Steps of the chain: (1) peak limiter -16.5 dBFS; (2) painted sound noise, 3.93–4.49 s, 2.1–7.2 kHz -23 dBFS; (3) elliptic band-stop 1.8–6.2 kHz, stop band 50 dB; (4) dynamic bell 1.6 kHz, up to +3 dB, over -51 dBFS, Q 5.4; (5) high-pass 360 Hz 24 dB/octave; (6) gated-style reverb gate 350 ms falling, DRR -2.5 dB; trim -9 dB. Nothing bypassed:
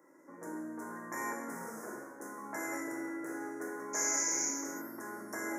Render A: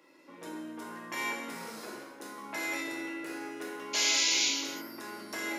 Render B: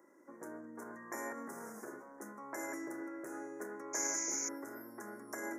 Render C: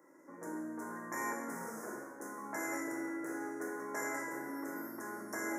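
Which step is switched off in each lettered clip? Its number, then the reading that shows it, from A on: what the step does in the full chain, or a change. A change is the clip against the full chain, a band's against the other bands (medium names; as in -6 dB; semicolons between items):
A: 3, 4 kHz band +17.5 dB; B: 6, loudness change -4.5 LU; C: 2, 8 kHz band -12.5 dB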